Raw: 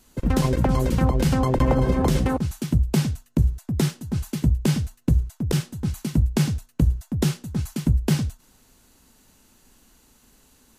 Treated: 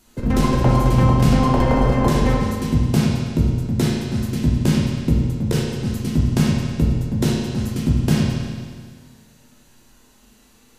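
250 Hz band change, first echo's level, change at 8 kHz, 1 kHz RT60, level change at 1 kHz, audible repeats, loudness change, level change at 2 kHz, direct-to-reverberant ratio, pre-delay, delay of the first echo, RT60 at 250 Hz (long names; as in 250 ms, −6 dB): +5.0 dB, no echo audible, +1.5 dB, 1.8 s, +6.0 dB, no echo audible, +4.0 dB, +5.0 dB, −4.0 dB, 9 ms, no echo audible, 1.8 s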